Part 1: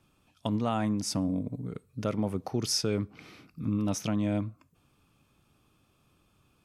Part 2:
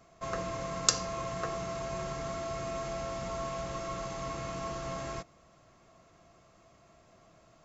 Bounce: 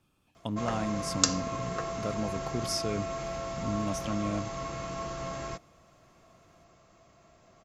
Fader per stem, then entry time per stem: −4.0, +1.0 decibels; 0.00, 0.35 seconds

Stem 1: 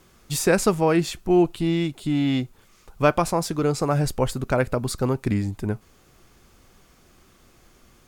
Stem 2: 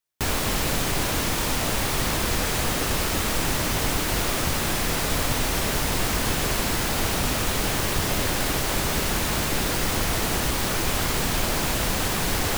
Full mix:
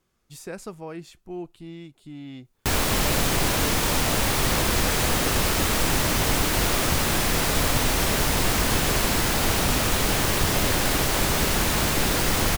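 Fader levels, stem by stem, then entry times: −17.0, +2.0 decibels; 0.00, 2.45 seconds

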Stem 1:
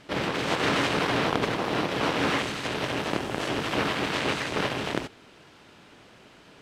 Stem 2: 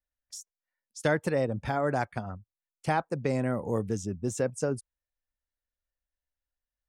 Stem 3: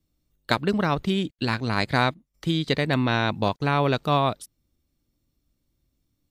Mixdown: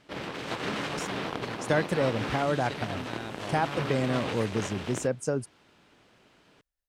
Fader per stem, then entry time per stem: −8.5, +0.5, −17.5 decibels; 0.00, 0.65, 0.00 seconds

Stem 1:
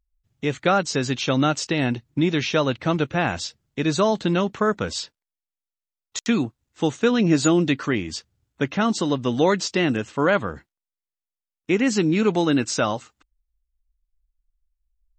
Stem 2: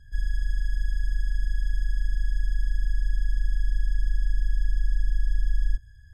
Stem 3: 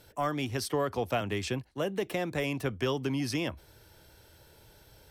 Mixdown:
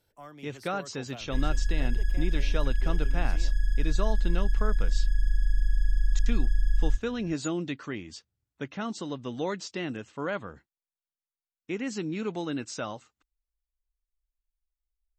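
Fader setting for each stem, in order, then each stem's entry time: −12.5, −0.5, −16.0 decibels; 0.00, 1.20, 0.00 seconds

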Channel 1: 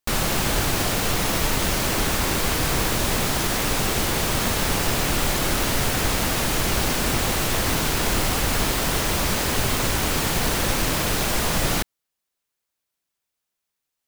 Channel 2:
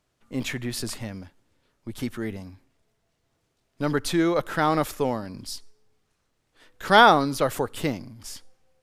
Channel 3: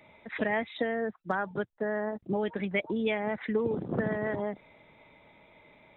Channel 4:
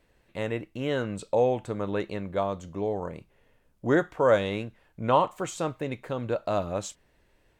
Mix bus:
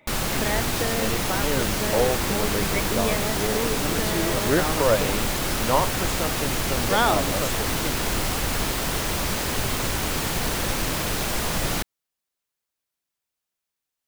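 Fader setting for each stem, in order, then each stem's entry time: −3.0, −7.0, +0.5, 0.0 decibels; 0.00, 0.00, 0.00, 0.60 seconds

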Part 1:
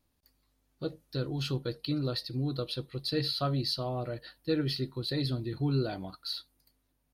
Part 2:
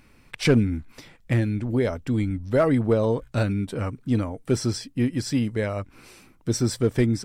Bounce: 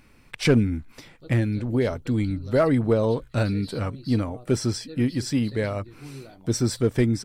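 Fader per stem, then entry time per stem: −11.5, 0.0 decibels; 0.40, 0.00 seconds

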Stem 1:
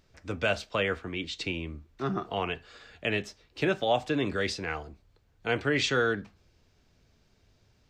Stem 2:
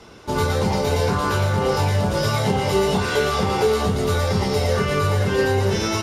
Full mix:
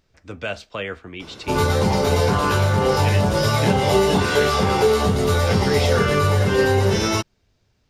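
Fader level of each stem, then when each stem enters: −0.5, +2.0 decibels; 0.00, 1.20 seconds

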